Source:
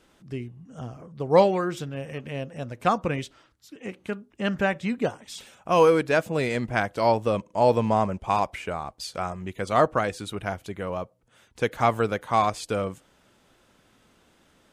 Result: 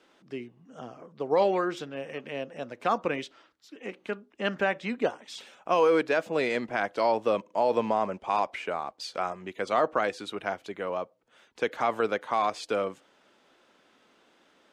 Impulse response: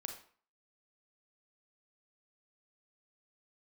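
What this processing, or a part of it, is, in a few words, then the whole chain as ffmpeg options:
DJ mixer with the lows and highs turned down: -filter_complex "[0:a]acrossover=split=230 6000:gain=0.0794 1 0.224[s0][s1][s2];[s0][s1][s2]amix=inputs=3:normalize=0,alimiter=limit=0.2:level=0:latency=1:release=48"

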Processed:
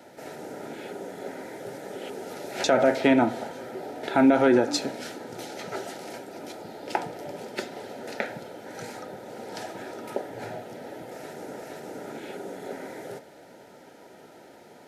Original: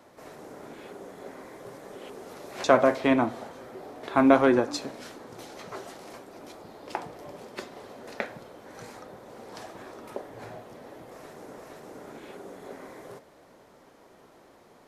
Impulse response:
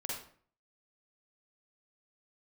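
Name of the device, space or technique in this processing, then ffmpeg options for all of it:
PA system with an anti-feedback notch: -af "highpass=110,asuperstop=centerf=1100:order=12:qfactor=4.6,alimiter=limit=0.168:level=0:latency=1:release=84,volume=2"

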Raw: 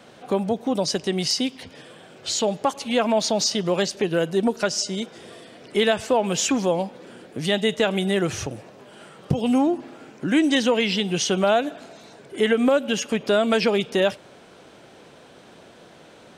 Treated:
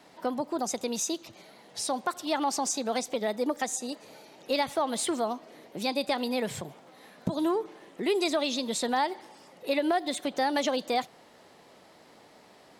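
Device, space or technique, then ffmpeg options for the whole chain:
nightcore: -af "asetrate=56448,aresample=44100,volume=0.422"

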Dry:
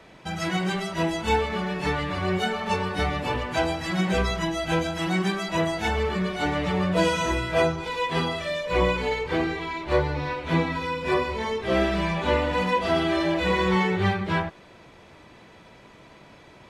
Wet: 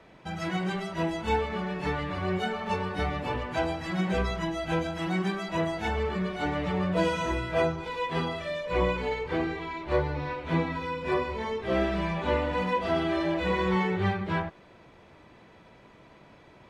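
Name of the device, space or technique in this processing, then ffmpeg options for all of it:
behind a face mask: -af "highshelf=f=3500:g=-8,volume=0.668"

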